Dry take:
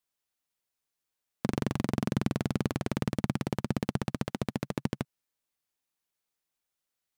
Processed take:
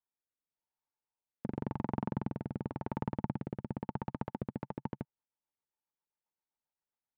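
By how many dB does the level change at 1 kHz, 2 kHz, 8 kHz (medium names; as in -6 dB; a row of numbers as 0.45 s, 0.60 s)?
-2.5 dB, -12.0 dB, under -30 dB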